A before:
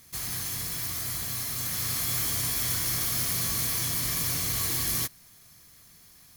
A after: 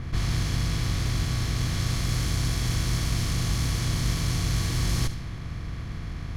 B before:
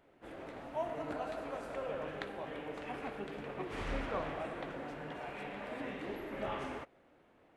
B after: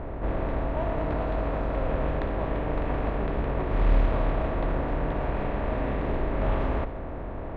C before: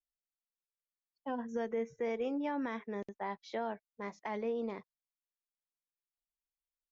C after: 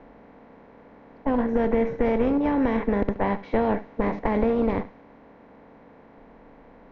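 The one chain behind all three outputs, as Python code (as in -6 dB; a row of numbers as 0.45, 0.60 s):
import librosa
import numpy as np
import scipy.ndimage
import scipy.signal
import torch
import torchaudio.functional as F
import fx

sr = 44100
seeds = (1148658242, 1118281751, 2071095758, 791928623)

p1 = fx.bin_compress(x, sr, power=0.4)
p2 = fx.tube_stage(p1, sr, drive_db=20.0, bias=0.65)
p3 = fx.low_shelf(p2, sr, hz=80.0, db=10.5)
p4 = fx.env_lowpass(p3, sr, base_hz=1600.0, full_db=-19.0)
p5 = fx.rider(p4, sr, range_db=3, speed_s=0.5)
p6 = p4 + (p5 * 10.0 ** (-0.5 / 20.0))
p7 = fx.low_shelf(p6, sr, hz=250.0, db=11.0)
p8 = p7 + 10.0 ** (-16.5 / 20.0) * np.pad(p7, (int(72 * sr / 1000.0), 0))[:len(p7)]
y = p8 * 10.0 ** (-26 / 20.0) / np.sqrt(np.mean(np.square(p8)))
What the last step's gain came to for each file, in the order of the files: -5.5, -2.0, +4.5 dB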